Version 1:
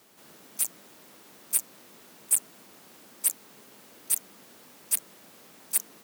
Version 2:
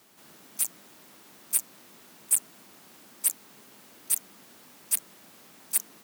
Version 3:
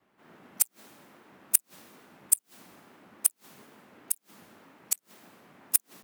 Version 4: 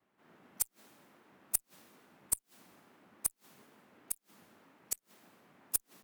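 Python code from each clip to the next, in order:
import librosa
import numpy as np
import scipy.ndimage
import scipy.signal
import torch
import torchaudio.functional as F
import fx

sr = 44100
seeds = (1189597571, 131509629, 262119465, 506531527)

y1 = fx.peak_eq(x, sr, hz=490.0, db=-4.0, octaves=0.64)
y2 = fx.wow_flutter(y1, sr, seeds[0], rate_hz=2.1, depth_cents=140.0)
y2 = fx.gate_flip(y2, sr, shuts_db=-13.0, range_db=-34)
y2 = fx.band_widen(y2, sr, depth_pct=100)
y2 = F.gain(torch.from_numpy(y2), 2.5).numpy()
y3 = fx.tube_stage(y2, sr, drive_db=8.0, bias=0.25)
y3 = F.gain(torch.from_numpy(y3), -7.0).numpy()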